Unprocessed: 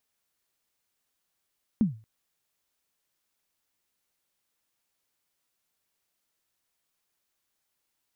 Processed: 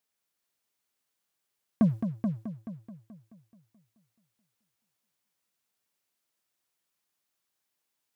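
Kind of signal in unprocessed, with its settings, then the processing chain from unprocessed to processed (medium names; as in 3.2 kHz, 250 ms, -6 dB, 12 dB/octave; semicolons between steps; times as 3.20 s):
kick drum length 0.23 s, from 240 Hz, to 110 Hz, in 133 ms, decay 0.34 s, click off, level -15.5 dB
high-pass 90 Hz; waveshaping leveller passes 2; on a send: multi-head delay 215 ms, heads first and second, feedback 42%, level -8.5 dB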